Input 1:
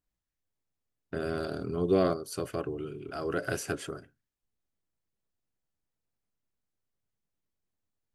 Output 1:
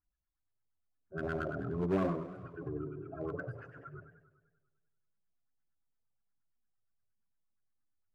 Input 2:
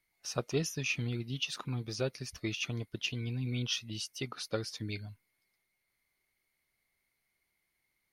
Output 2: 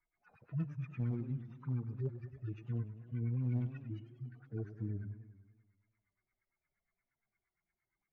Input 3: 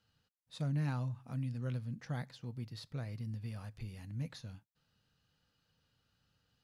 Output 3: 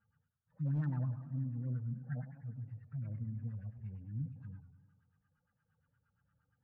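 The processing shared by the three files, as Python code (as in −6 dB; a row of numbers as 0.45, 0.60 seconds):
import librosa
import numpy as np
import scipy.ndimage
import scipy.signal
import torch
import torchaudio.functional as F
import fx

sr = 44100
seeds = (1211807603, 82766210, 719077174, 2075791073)

p1 = fx.hpss_only(x, sr, part='harmonic')
p2 = fx.graphic_eq(p1, sr, hz=(500, 1000, 4000, 8000), db=(-11, -5, -12, 6))
p3 = fx.filter_lfo_lowpass(p2, sr, shape='sine', hz=8.6, low_hz=530.0, high_hz=1600.0, q=4.1)
p4 = 10.0 ** (-30.5 / 20.0) * (np.abs((p3 / 10.0 ** (-30.5 / 20.0) + 3.0) % 4.0 - 2.0) - 1.0)
p5 = p3 + (p4 * 10.0 ** (-4.0 / 20.0))
p6 = fx.echo_warbled(p5, sr, ms=99, feedback_pct=61, rate_hz=2.8, cents=157, wet_db=-12.0)
y = p6 * 10.0 ** (-3.5 / 20.0)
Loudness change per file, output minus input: −5.5, −4.5, 0.0 LU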